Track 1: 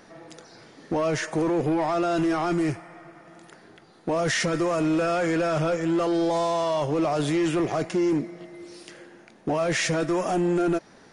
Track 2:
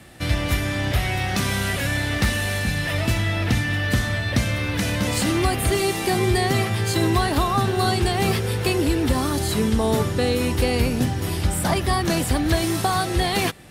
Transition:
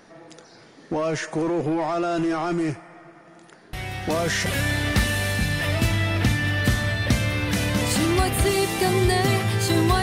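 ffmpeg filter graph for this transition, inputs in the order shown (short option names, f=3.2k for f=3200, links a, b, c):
-filter_complex "[1:a]asplit=2[a][b];[0:a]apad=whole_dur=10.02,atrim=end=10.02,atrim=end=4.462[c];[b]atrim=start=1.718:end=7.28[d];[a]atrim=start=0.99:end=1.72,asetpts=PTS-STARTPTS,volume=-7.5dB,afade=t=in:d=0.004:c=hsin,afade=t=out:st=0.726:d=0.004:c=hsin,adelay=164493S[e];[c][d]acrossfade=d=0.004:c1=hsin:c2=hsin[f];[f][e]amix=inputs=2:normalize=0"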